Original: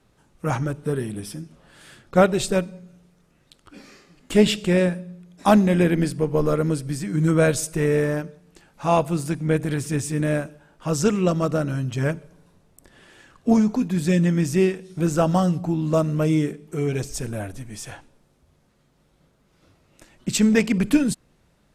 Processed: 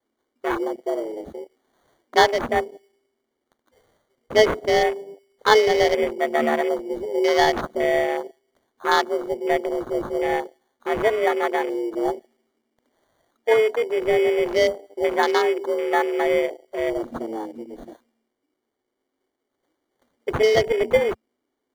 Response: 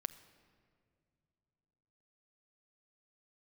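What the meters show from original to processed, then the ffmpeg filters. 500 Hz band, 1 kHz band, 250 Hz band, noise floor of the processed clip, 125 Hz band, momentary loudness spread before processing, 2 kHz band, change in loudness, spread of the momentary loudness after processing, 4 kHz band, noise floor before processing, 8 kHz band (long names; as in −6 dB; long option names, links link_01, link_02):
+3.5 dB, +5.5 dB, −8.5 dB, −79 dBFS, −19.0 dB, 15 LU, +5.5 dB, 0.0 dB, 14 LU, +4.5 dB, −63 dBFS, −8.0 dB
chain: -af "afreqshift=220,acrusher=samples=17:mix=1:aa=0.000001,afwtdn=0.0355"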